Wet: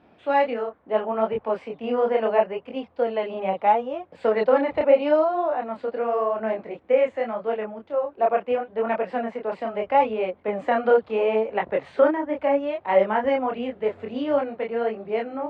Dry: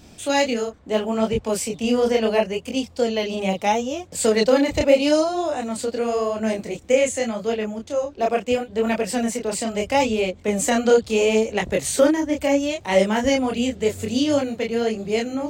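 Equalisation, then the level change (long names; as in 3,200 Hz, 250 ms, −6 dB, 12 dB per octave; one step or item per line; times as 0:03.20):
dynamic equaliser 1,000 Hz, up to +5 dB, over −33 dBFS, Q 0.72
resonant band-pass 1,000 Hz, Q 0.66
high-frequency loss of the air 410 metres
0.0 dB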